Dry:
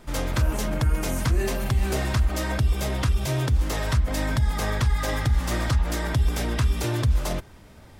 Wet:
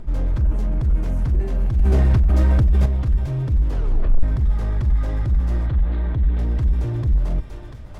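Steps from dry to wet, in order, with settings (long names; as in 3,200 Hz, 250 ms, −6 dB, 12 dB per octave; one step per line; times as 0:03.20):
feedback echo with a high-pass in the loop 691 ms, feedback 44%, high-pass 790 Hz, level −6.5 dB
upward compression, threshold −40 dBFS
0:05.66–0:06.39: elliptic low-pass filter 4,000 Hz
soft clipping −24 dBFS, distortion −9 dB
0:03.68: tape stop 0.55 s
spectral tilt −4 dB per octave
convolution reverb RT60 4.9 s, pre-delay 8 ms, DRR 17 dB
0:01.79–0:02.86: envelope flattener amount 100%
level −6 dB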